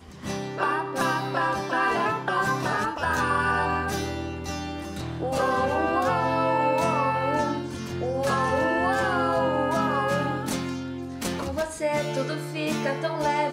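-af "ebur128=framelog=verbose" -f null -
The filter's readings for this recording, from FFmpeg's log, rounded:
Integrated loudness:
  I:         -25.7 LUFS
  Threshold: -35.7 LUFS
Loudness range:
  LRA:         2.8 LU
  Threshold: -45.5 LUFS
  LRA low:   -27.3 LUFS
  LRA high:  -24.5 LUFS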